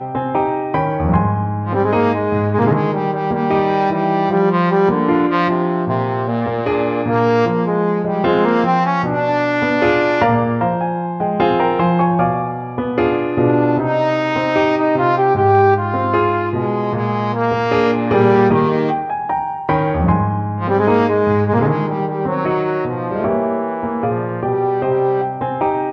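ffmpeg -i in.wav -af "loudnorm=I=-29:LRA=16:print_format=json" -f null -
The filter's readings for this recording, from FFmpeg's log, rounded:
"input_i" : "-16.8",
"input_tp" : "-3.7",
"input_lra" : "3.1",
"input_thresh" : "-26.8",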